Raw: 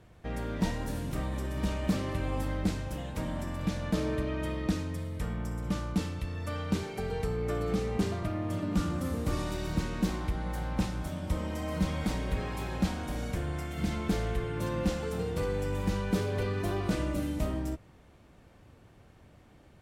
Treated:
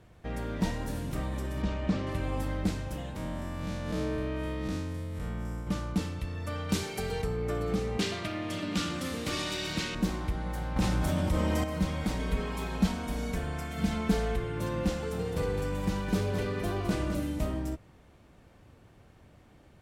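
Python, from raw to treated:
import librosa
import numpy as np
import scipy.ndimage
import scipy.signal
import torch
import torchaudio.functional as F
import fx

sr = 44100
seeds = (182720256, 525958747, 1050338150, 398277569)

y = fx.air_absorb(x, sr, metres=110.0, at=(1.62, 2.07))
y = fx.spec_blur(y, sr, span_ms=115.0, at=(3.16, 5.67))
y = fx.high_shelf(y, sr, hz=2500.0, db=10.5, at=(6.69, 7.22))
y = fx.weighting(y, sr, curve='D', at=(7.99, 9.95))
y = fx.env_flatten(y, sr, amount_pct=70, at=(10.76, 11.64))
y = fx.comb(y, sr, ms=4.5, depth=0.66, at=(12.19, 14.36))
y = fx.echo_single(y, sr, ms=210, db=-7.5, at=(15.04, 17.15))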